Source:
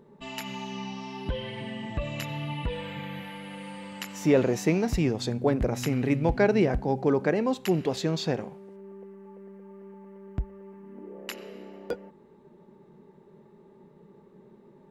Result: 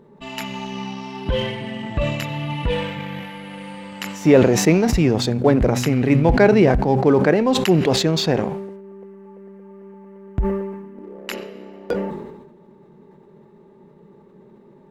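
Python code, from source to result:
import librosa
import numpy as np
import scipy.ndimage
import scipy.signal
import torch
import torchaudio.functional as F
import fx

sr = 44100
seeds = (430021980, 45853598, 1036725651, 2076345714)

p1 = fx.high_shelf(x, sr, hz=5600.0, db=-5.0)
p2 = np.sign(p1) * np.maximum(np.abs(p1) - 10.0 ** (-37.5 / 20.0), 0.0)
p3 = p1 + (p2 * librosa.db_to_amplitude(-6.0))
p4 = fx.sustainer(p3, sr, db_per_s=47.0)
y = p4 * librosa.db_to_amplitude(5.0)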